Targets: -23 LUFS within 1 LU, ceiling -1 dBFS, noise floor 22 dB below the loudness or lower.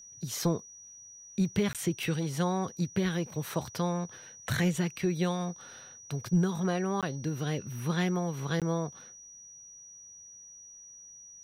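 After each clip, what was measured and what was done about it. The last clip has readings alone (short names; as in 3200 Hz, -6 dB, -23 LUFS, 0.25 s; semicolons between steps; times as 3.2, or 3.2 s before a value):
dropouts 3; longest dropout 17 ms; steady tone 5800 Hz; tone level -48 dBFS; loudness -31.5 LUFS; peak -16.0 dBFS; loudness target -23.0 LUFS
-> interpolate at 1.73/7.01/8.6, 17 ms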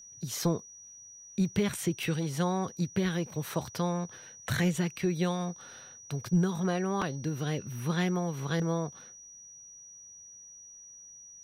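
dropouts 0; steady tone 5800 Hz; tone level -48 dBFS
-> notch 5800 Hz, Q 30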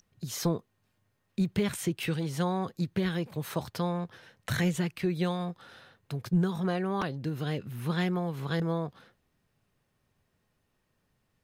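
steady tone none; loudness -31.5 LUFS; peak -16.0 dBFS; loudness target -23.0 LUFS
-> gain +8.5 dB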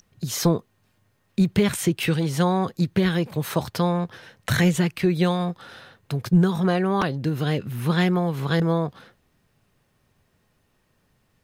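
loudness -23.0 LUFS; peak -7.5 dBFS; noise floor -67 dBFS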